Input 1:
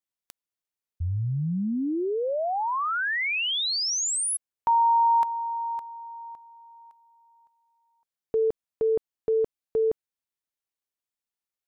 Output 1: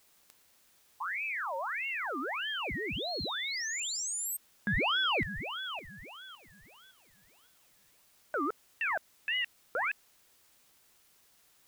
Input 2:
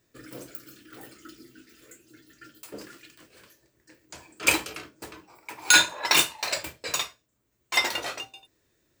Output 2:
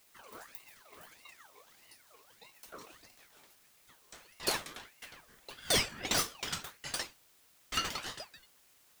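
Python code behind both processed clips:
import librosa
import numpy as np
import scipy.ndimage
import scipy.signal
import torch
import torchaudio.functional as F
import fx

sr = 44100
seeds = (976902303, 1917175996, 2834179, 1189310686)

y = 10.0 ** (-13.0 / 20.0) * np.tanh(x / 10.0 ** (-13.0 / 20.0))
y = fx.dmg_noise_colour(y, sr, seeds[0], colour='white', level_db=-57.0)
y = fx.ring_lfo(y, sr, carrier_hz=1600.0, swing_pct=55, hz=1.6)
y = y * librosa.db_to_amplitude(-5.5)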